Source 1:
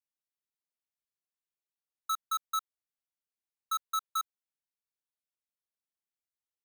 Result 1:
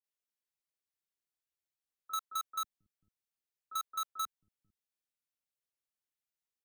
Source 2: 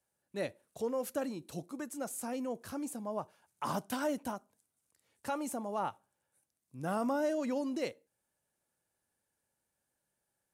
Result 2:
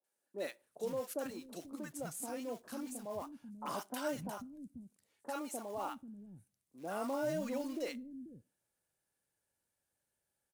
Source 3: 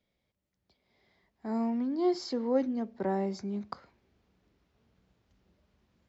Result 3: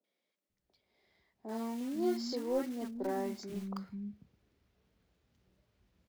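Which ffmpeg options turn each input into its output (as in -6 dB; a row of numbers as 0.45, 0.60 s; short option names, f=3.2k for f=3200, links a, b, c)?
-filter_complex "[0:a]acrusher=bits=5:mode=log:mix=0:aa=0.000001,asoftclip=type=tanh:threshold=-20dB,acrossover=split=230|930[a][b][c];[c]adelay=40[d];[a]adelay=490[e];[e][b][d]amix=inputs=3:normalize=0,volume=-2dB"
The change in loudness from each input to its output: -4.0, -4.5, -5.5 LU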